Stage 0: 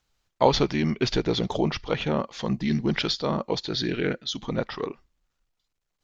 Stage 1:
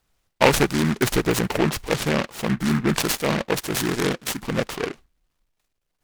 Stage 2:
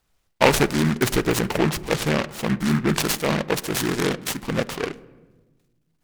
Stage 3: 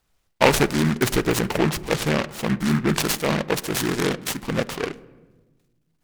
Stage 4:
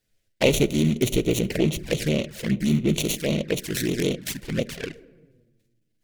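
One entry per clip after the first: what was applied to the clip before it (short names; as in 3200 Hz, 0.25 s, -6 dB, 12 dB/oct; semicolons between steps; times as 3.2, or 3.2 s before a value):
noise-modulated delay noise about 1400 Hz, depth 0.16 ms; gain +3.5 dB
on a send at -16 dB: LPF 1900 Hz 6 dB/oct + reverb RT60 1.2 s, pre-delay 12 ms
nothing audible
band shelf 1000 Hz -14.5 dB 1 oct; envelope flanger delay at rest 9.4 ms, full sweep at -19.5 dBFS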